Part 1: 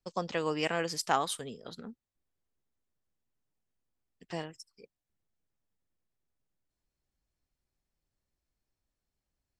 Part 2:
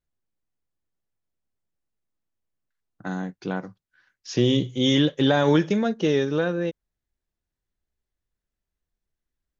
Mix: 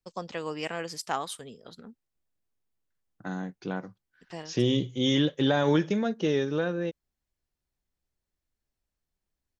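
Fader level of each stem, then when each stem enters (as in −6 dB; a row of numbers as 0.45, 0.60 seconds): −2.5, −4.5 decibels; 0.00, 0.20 seconds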